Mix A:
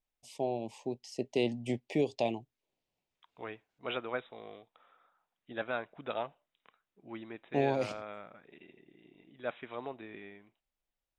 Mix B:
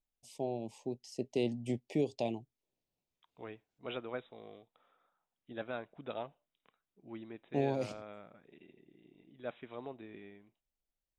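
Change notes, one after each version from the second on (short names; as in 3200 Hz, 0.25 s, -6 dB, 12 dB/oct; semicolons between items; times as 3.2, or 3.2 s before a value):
master: add bell 1600 Hz -8 dB 3 oct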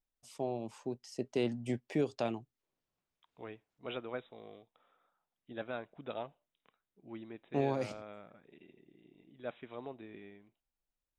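first voice: remove Butterworth band-stop 1400 Hz, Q 1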